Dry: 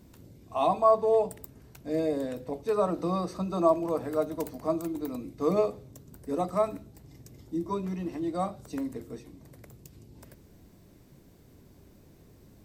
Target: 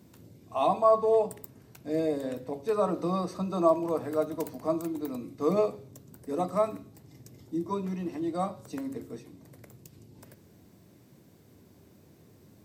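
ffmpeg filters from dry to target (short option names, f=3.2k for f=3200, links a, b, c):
-af "highpass=f=88:w=0.5412,highpass=f=88:w=1.3066,bandreject=f=137.7:t=h:w=4,bandreject=f=275.4:t=h:w=4,bandreject=f=413.1:t=h:w=4,bandreject=f=550.8:t=h:w=4,bandreject=f=688.5:t=h:w=4,bandreject=f=826.2:t=h:w=4,bandreject=f=963.9:t=h:w=4,bandreject=f=1.1016k:t=h:w=4,bandreject=f=1.2393k:t=h:w=4,bandreject=f=1.377k:t=h:w=4,bandreject=f=1.5147k:t=h:w=4,bandreject=f=1.6524k:t=h:w=4,bandreject=f=1.7901k:t=h:w=4,bandreject=f=1.9278k:t=h:w=4,bandreject=f=2.0655k:t=h:w=4,bandreject=f=2.2032k:t=h:w=4,bandreject=f=2.3409k:t=h:w=4,bandreject=f=2.4786k:t=h:w=4,bandreject=f=2.6163k:t=h:w=4,bandreject=f=2.754k:t=h:w=4,bandreject=f=2.8917k:t=h:w=4,bandreject=f=3.0294k:t=h:w=4,bandreject=f=3.1671k:t=h:w=4,bandreject=f=3.3048k:t=h:w=4,bandreject=f=3.4425k:t=h:w=4,bandreject=f=3.5802k:t=h:w=4,bandreject=f=3.7179k:t=h:w=4,bandreject=f=3.8556k:t=h:w=4,bandreject=f=3.9933k:t=h:w=4,bandreject=f=4.131k:t=h:w=4,bandreject=f=4.2687k:t=h:w=4,bandreject=f=4.4064k:t=h:w=4,bandreject=f=4.5441k:t=h:w=4,bandreject=f=4.6818k:t=h:w=4,bandreject=f=4.8195k:t=h:w=4,bandreject=f=4.9572k:t=h:w=4,bandreject=f=5.0949k:t=h:w=4,bandreject=f=5.2326k:t=h:w=4,bandreject=f=5.3703k:t=h:w=4"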